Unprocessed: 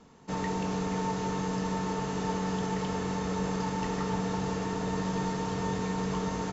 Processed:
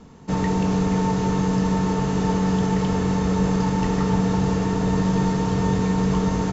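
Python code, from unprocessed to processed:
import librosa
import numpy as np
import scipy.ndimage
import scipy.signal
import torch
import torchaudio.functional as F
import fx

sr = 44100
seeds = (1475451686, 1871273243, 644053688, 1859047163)

y = fx.low_shelf(x, sr, hz=260.0, db=9.5)
y = y * librosa.db_to_amplitude(5.5)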